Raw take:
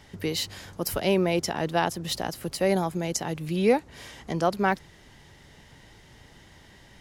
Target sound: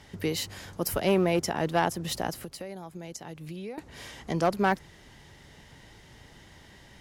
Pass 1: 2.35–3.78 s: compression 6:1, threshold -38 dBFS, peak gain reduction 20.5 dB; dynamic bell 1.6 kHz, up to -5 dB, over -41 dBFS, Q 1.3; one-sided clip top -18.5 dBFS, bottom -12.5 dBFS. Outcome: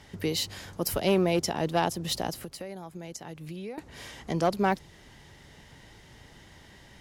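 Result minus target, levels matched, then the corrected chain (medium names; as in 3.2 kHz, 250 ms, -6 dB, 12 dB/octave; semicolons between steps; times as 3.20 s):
4 kHz band +3.0 dB
2.35–3.78 s: compression 6:1, threshold -38 dBFS, peak gain reduction 20.5 dB; dynamic bell 4 kHz, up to -5 dB, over -41 dBFS, Q 1.3; one-sided clip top -18.5 dBFS, bottom -12.5 dBFS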